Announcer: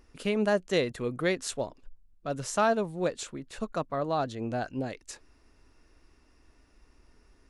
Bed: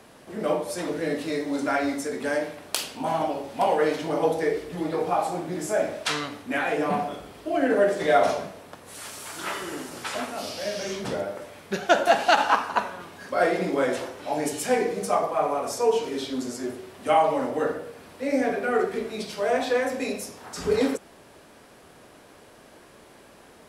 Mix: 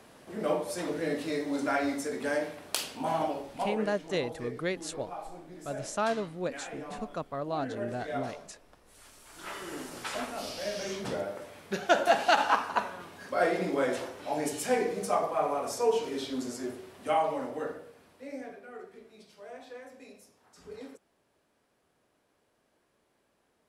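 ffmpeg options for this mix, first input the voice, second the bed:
ffmpeg -i stem1.wav -i stem2.wav -filter_complex "[0:a]adelay=3400,volume=-4.5dB[link_01];[1:a]volume=8dB,afade=type=out:start_time=3.25:duration=0.6:silence=0.237137,afade=type=in:start_time=9.27:duration=0.56:silence=0.251189,afade=type=out:start_time=16.53:duration=2.1:silence=0.133352[link_02];[link_01][link_02]amix=inputs=2:normalize=0" out.wav

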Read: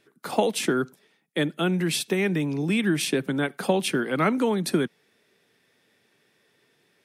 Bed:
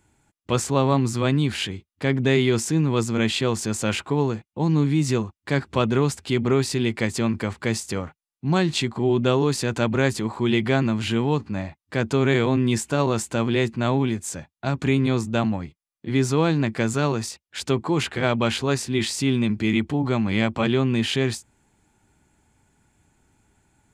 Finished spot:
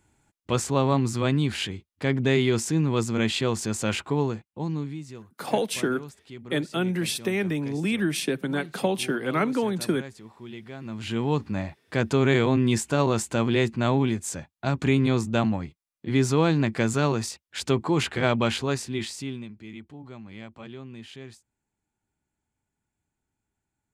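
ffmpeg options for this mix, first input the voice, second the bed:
ffmpeg -i stem1.wav -i stem2.wav -filter_complex "[0:a]adelay=5150,volume=-2dB[link_01];[1:a]volume=16dB,afade=type=out:start_time=4.17:duration=0.89:silence=0.141254,afade=type=in:start_time=10.8:duration=0.63:silence=0.11885,afade=type=out:start_time=18.33:duration=1.18:silence=0.112202[link_02];[link_01][link_02]amix=inputs=2:normalize=0" out.wav

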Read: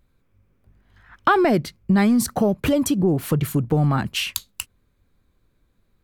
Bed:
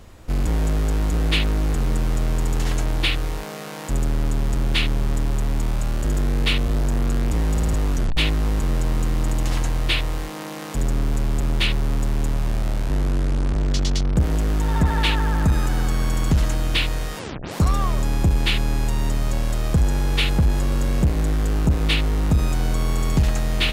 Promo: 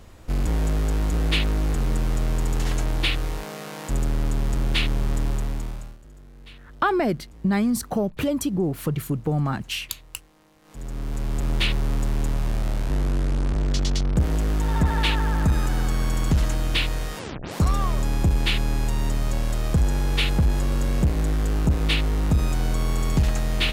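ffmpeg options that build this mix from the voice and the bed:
ffmpeg -i stem1.wav -i stem2.wav -filter_complex "[0:a]adelay=5550,volume=-4.5dB[link_01];[1:a]volume=21.5dB,afade=type=out:start_time=5.28:duration=0.7:silence=0.0668344,afade=type=in:start_time=10.62:duration=0.92:silence=0.0668344[link_02];[link_01][link_02]amix=inputs=2:normalize=0" out.wav

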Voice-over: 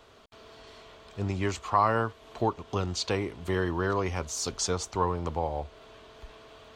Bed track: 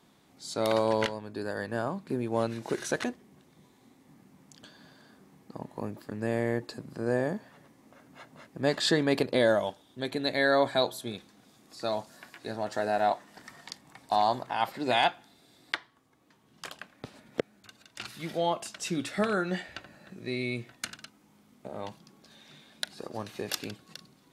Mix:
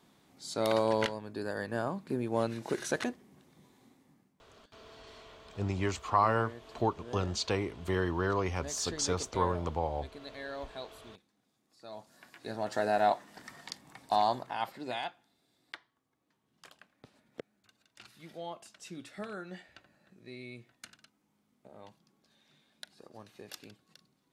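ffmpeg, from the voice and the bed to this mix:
ffmpeg -i stem1.wav -i stem2.wav -filter_complex "[0:a]adelay=4400,volume=-2.5dB[link_01];[1:a]volume=15dB,afade=type=out:start_time=3.82:duration=0.52:silence=0.16788,afade=type=in:start_time=11.87:duration=0.91:silence=0.141254,afade=type=out:start_time=13.96:duration=1.08:silence=0.223872[link_02];[link_01][link_02]amix=inputs=2:normalize=0" out.wav

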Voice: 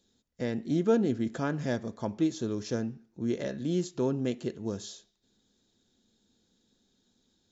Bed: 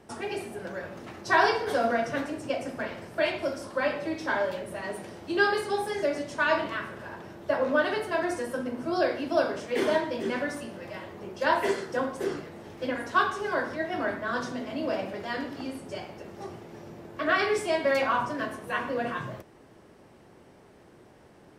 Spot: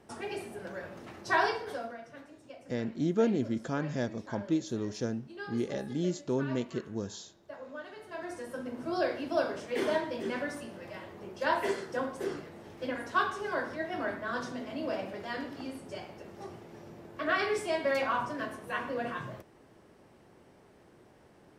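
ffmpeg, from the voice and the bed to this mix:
ffmpeg -i stem1.wav -i stem2.wav -filter_complex "[0:a]adelay=2300,volume=-2dB[link_01];[1:a]volume=10dB,afade=type=out:start_time=1.33:duration=0.63:silence=0.188365,afade=type=in:start_time=7.95:duration=0.93:silence=0.188365[link_02];[link_01][link_02]amix=inputs=2:normalize=0" out.wav

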